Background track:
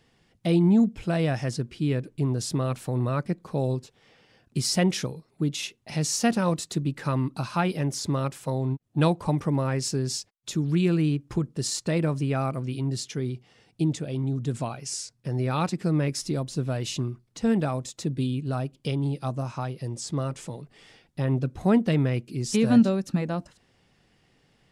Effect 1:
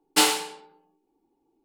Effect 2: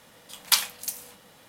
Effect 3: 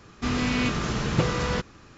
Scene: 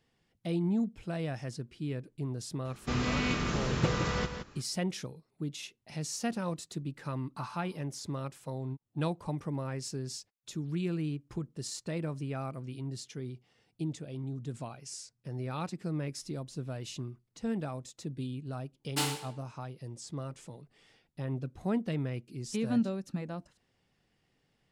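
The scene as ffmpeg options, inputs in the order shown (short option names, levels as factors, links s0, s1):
-filter_complex "[1:a]asplit=2[s0][s1];[0:a]volume=0.299[s2];[3:a]aecho=1:1:168:0.376[s3];[s0]asuperpass=centerf=1100:order=4:qfactor=3.5[s4];[s3]atrim=end=1.97,asetpts=PTS-STARTPTS,volume=0.531,afade=t=in:d=0.004:c=hsin,afade=t=out:st=1.966:d=0.004:c=hsin,adelay=2650[s5];[s4]atrim=end=1.64,asetpts=PTS-STARTPTS,volume=0.299,afade=t=in:d=0.004:c=hsin,afade=t=out:st=1.636:d=0.004:c=hsin,adelay=7200[s6];[s1]atrim=end=1.64,asetpts=PTS-STARTPTS,volume=0.237,afade=t=in:d=0.004:c=hsin,afade=t=out:st=1.636:d=0.004:c=hsin,adelay=18800[s7];[s2][s5][s6][s7]amix=inputs=4:normalize=0"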